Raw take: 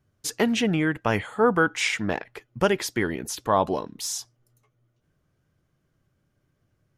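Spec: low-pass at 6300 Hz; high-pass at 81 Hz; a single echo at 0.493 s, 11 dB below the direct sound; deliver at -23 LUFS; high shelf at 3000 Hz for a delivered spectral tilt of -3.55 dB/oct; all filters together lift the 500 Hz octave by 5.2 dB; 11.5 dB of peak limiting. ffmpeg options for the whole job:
-af "highpass=81,lowpass=6.3k,equalizer=f=500:t=o:g=6,highshelf=f=3k:g=6,alimiter=limit=-15dB:level=0:latency=1,aecho=1:1:493:0.282,volume=3.5dB"

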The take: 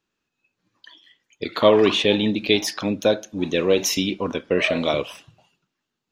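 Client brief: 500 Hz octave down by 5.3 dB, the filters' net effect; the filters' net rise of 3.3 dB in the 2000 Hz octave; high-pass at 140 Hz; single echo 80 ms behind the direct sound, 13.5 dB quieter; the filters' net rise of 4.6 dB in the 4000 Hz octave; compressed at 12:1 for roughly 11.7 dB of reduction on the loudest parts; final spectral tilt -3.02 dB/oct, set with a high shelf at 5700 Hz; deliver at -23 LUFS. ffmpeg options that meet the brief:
-af "highpass=140,equalizer=f=500:t=o:g=-6.5,equalizer=f=2k:t=o:g=3,equalizer=f=4k:t=o:g=7.5,highshelf=f=5.7k:g=-8,acompressor=threshold=-24dB:ratio=12,aecho=1:1:80:0.211,volume=5.5dB"

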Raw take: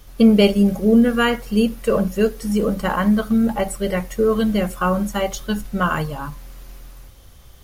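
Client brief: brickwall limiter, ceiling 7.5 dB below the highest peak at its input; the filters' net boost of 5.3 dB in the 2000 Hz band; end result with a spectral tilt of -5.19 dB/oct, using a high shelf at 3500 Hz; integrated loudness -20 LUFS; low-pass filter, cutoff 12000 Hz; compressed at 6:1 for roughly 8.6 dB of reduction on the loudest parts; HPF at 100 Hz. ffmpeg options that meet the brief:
-af "highpass=100,lowpass=12k,equalizer=f=2k:t=o:g=9,highshelf=f=3.5k:g=-6.5,acompressor=threshold=-18dB:ratio=6,volume=5.5dB,alimiter=limit=-10.5dB:level=0:latency=1"

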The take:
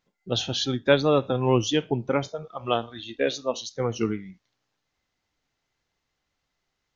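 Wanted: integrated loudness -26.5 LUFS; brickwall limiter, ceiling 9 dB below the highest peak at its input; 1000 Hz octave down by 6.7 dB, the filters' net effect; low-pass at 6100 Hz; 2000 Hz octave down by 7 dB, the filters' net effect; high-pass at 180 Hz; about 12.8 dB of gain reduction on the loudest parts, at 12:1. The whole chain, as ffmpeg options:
-af "highpass=180,lowpass=6.1k,equalizer=f=1k:t=o:g=-7.5,equalizer=f=2k:t=o:g=-7,acompressor=threshold=-29dB:ratio=12,volume=11.5dB,alimiter=limit=-15.5dB:level=0:latency=1"

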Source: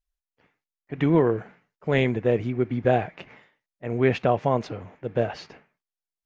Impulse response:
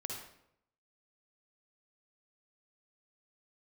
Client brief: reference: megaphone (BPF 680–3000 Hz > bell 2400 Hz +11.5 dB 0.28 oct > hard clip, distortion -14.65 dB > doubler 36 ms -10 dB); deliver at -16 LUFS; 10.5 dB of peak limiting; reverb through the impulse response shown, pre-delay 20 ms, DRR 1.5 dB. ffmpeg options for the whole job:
-filter_complex "[0:a]alimiter=limit=-17dB:level=0:latency=1,asplit=2[a][b];[1:a]atrim=start_sample=2205,adelay=20[c];[b][c]afir=irnorm=-1:irlink=0,volume=-1dB[d];[a][d]amix=inputs=2:normalize=0,highpass=680,lowpass=3k,equalizer=f=2.4k:t=o:w=0.28:g=11.5,asoftclip=type=hard:threshold=-26.5dB,asplit=2[e][f];[f]adelay=36,volume=-10dB[g];[e][g]amix=inputs=2:normalize=0,volume=18dB"

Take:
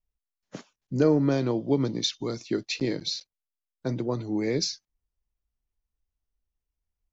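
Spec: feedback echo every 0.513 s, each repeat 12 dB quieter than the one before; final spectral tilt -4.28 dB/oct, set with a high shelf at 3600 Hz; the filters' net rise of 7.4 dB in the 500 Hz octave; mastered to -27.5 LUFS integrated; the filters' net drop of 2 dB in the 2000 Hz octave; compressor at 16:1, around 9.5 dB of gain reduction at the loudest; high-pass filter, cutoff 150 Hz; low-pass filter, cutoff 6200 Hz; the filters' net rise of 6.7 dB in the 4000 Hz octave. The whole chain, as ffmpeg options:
-af "highpass=150,lowpass=6.2k,equalizer=f=500:t=o:g=9,equalizer=f=2k:t=o:g=-7.5,highshelf=f=3.6k:g=6,equalizer=f=4k:t=o:g=6,acompressor=threshold=-19dB:ratio=16,aecho=1:1:513|1026|1539:0.251|0.0628|0.0157,volume=-0.5dB"

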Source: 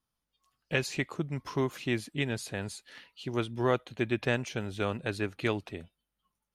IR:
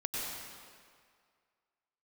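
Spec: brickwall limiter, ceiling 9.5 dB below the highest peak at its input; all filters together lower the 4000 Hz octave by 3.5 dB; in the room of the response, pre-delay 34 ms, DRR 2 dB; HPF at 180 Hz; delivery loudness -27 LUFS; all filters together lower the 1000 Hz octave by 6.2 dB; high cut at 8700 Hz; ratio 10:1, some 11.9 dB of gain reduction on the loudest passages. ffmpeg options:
-filter_complex "[0:a]highpass=180,lowpass=8.7k,equalizer=f=1k:t=o:g=-8,equalizer=f=4k:t=o:g=-4,acompressor=threshold=-38dB:ratio=10,alimiter=level_in=10dB:limit=-24dB:level=0:latency=1,volume=-10dB,asplit=2[a][b];[1:a]atrim=start_sample=2205,adelay=34[c];[b][c]afir=irnorm=-1:irlink=0,volume=-6.5dB[d];[a][d]amix=inputs=2:normalize=0,volume=17.5dB"

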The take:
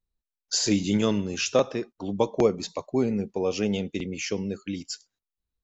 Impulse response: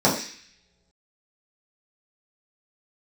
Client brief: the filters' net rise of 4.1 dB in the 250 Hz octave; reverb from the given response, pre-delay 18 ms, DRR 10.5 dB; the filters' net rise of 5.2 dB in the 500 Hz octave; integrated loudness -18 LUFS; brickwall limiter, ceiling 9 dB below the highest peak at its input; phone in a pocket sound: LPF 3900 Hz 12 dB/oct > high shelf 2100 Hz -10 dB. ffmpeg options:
-filter_complex "[0:a]equalizer=f=250:t=o:g=4,equalizer=f=500:t=o:g=5.5,alimiter=limit=-13dB:level=0:latency=1,asplit=2[a][b];[1:a]atrim=start_sample=2205,adelay=18[c];[b][c]afir=irnorm=-1:irlink=0,volume=-29.5dB[d];[a][d]amix=inputs=2:normalize=0,lowpass=3.9k,highshelf=f=2.1k:g=-10,volume=6.5dB"

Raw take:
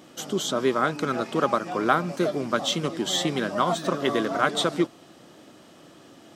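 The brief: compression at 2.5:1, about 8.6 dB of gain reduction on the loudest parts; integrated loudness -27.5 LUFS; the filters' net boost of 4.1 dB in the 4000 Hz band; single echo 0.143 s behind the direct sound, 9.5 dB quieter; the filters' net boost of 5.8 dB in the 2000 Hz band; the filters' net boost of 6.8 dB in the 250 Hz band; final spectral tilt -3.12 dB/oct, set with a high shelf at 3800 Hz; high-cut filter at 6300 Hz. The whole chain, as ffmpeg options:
-af "lowpass=6.3k,equalizer=f=250:t=o:g=9,equalizer=f=2k:t=o:g=8,highshelf=f=3.8k:g=-3.5,equalizer=f=4k:t=o:g=4.5,acompressor=threshold=-26dB:ratio=2.5,aecho=1:1:143:0.335,volume=-0.5dB"

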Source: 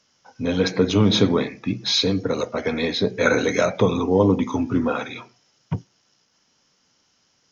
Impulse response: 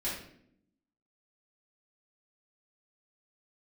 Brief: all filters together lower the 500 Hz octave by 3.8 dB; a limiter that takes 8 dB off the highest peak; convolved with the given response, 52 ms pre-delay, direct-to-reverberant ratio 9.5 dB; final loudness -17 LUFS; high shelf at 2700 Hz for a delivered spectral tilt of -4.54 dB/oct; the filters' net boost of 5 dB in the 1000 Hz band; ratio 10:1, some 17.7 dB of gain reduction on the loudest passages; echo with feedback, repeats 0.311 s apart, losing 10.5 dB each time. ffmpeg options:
-filter_complex "[0:a]equalizer=f=500:t=o:g=-6,equalizer=f=1k:t=o:g=7,highshelf=f=2.7k:g=5.5,acompressor=threshold=-31dB:ratio=10,alimiter=level_in=3dB:limit=-24dB:level=0:latency=1,volume=-3dB,aecho=1:1:311|622|933:0.299|0.0896|0.0269,asplit=2[a][b];[1:a]atrim=start_sample=2205,adelay=52[c];[b][c]afir=irnorm=-1:irlink=0,volume=-14dB[d];[a][d]amix=inputs=2:normalize=0,volume=19.5dB"

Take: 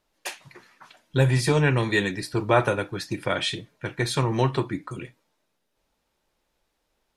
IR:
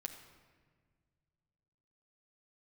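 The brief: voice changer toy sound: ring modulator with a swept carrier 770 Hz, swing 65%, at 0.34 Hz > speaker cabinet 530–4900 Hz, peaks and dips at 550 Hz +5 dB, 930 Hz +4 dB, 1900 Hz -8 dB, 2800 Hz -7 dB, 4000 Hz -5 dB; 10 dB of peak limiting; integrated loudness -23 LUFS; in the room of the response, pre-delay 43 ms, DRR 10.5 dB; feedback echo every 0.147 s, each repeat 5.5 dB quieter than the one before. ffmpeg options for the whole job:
-filter_complex "[0:a]alimiter=limit=-14.5dB:level=0:latency=1,aecho=1:1:147|294|441|588|735|882|1029:0.531|0.281|0.149|0.079|0.0419|0.0222|0.0118,asplit=2[a][b];[1:a]atrim=start_sample=2205,adelay=43[c];[b][c]afir=irnorm=-1:irlink=0,volume=-8dB[d];[a][d]amix=inputs=2:normalize=0,aeval=exprs='val(0)*sin(2*PI*770*n/s+770*0.65/0.34*sin(2*PI*0.34*n/s))':c=same,highpass=530,equalizer=f=550:t=q:w=4:g=5,equalizer=f=930:t=q:w=4:g=4,equalizer=f=1.9k:t=q:w=4:g=-8,equalizer=f=2.8k:t=q:w=4:g=-7,equalizer=f=4k:t=q:w=4:g=-5,lowpass=f=4.9k:w=0.5412,lowpass=f=4.9k:w=1.3066,volume=8dB"

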